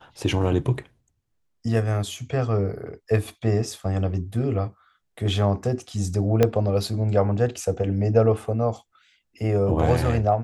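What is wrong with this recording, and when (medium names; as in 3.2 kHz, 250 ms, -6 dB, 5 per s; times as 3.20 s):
6.43 s: pop -6 dBFS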